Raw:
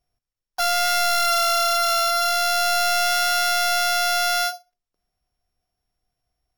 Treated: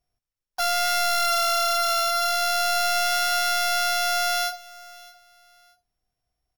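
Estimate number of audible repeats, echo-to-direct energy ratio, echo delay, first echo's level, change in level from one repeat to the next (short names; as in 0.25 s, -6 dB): 2, -20.5 dB, 0.622 s, -21.0 dB, -11.5 dB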